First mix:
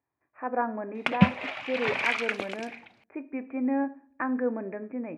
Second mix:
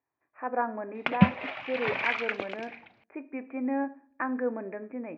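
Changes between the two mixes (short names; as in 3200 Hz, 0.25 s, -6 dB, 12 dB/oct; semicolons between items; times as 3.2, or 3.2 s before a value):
speech: add low shelf 200 Hz -8.5 dB; background: add air absorption 180 m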